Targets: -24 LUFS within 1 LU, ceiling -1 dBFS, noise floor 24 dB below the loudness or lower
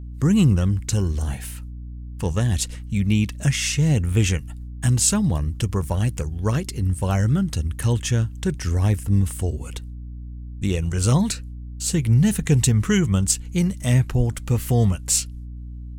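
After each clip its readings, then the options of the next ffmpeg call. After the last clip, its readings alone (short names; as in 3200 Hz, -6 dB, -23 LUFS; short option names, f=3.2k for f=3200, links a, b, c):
hum 60 Hz; harmonics up to 300 Hz; hum level -32 dBFS; loudness -21.5 LUFS; peak -5.5 dBFS; loudness target -24.0 LUFS
-> -af "bandreject=f=60:t=h:w=4,bandreject=f=120:t=h:w=4,bandreject=f=180:t=h:w=4,bandreject=f=240:t=h:w=4,bandreject=f=300:t=h:w=4"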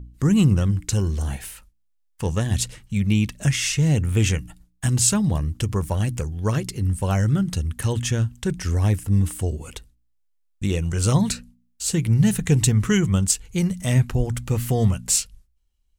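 hum none; loudness -22.0 LUFS; peak -5.5 dBFS; loudness target -24.0 LUFS
-> -af "volume=-2dB"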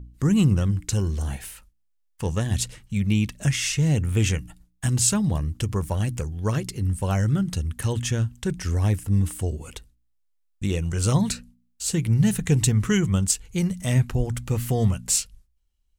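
loudness -24.0 LUFS; peak -7.5 dBFS; noise floor -68 dBFS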